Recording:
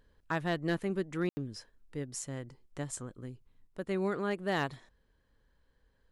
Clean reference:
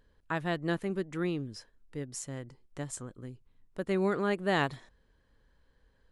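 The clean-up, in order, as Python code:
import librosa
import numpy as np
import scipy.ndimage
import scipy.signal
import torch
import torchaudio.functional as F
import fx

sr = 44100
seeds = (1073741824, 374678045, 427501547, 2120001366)

y = fx.fix_declip(x, sr, threshold_db=-22.5)
y = fx.fix_ambience(y, sr, seeds[0], print_start_s=4.95, print_end_s=5.45, start_s=1.29, end_s=1.37)
y = fx.fix_level(y, sr, at_s=3.67, step_db=3.5)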